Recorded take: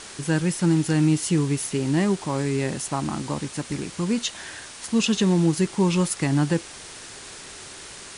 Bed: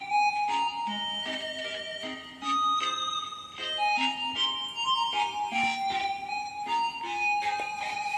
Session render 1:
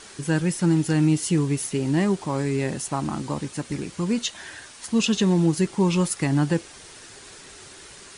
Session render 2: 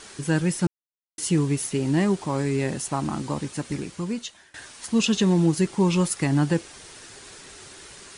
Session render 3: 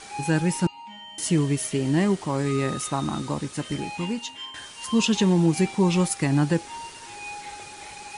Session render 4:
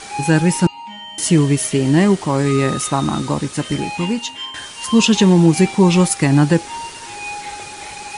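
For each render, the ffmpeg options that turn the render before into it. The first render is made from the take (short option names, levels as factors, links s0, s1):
-af "afftdn=nr=6:nf=-41"
-filter_complex "[0:a]asplit=4[s0][s1][s2][s3];[s0]atrim=end=0.67,asetpts=PTS-STARTPTS,afade=t=out:st=0.666:d=0.004:c=hsin[s4];[s1]atrim=start=0.67:end=1.18,asetpts=PTS-STARTPTS,volume=0[s5];[s2]atrim=start=1.18:end=4.54,asetpts=PTS-STARTPTS,afade=t=in:d=0.004:c=hsin,afade=t=out:st=2.55:d=0.81:silence=0.0749894[s6];[s3]atrim=start=4.54,asetpts=PTS-STARTPTS,afade=t=in:d=0.004:c=hsin:silence=0.0749894[s7];[s4][s5][s6][s7]concat=n=4:v=0:a=1"
-filter_complex "[1:a]volume=0.316[s0];[0:a][s0]amix=inputs=2:normalize=0"
-af "volume=2.66"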